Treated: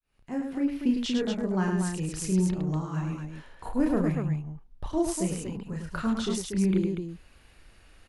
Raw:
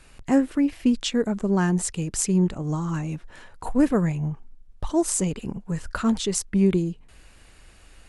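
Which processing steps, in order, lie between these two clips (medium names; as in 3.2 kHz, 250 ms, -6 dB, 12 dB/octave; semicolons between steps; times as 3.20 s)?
fade-in on the opening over 0.77 s; peaking EQ 7.7 kHz -8 dB 0.54 oct; loudspeakers at several distances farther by 11 m -4 dB, 36 m -5 dB, 82 m -5 dB; trim -7 dB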